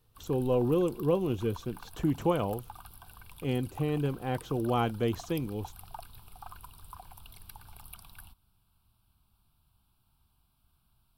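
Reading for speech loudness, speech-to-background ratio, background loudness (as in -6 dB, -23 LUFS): -31.0 LUFS, 19.0 dB, -50.0 LUFS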